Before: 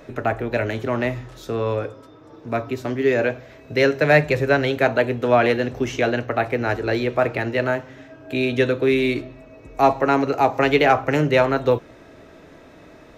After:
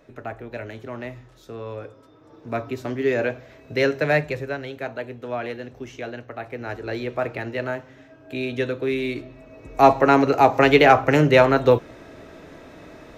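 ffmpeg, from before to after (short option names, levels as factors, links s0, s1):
-af "volume=3.98,afade=t=in:st=1.71:d=0.87:silence=0.398107,afade=t=out:st=3.93:d=0.64:silence=0.334965,afade=t=in:st=6.39:d=0.7:silence=0.473151,afade=t=in:st=9.15:d=0.72:silence=0.375837"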